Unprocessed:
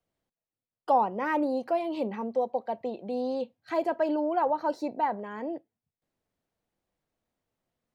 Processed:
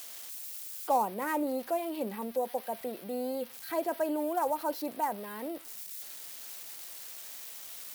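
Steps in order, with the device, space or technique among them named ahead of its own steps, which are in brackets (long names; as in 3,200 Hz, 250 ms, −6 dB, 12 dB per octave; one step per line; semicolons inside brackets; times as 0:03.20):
budget class-D amplifier (gap after every zero crossing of 0.073 ms; spike at every zero crossing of −26.5 dBFS)
level −4 dB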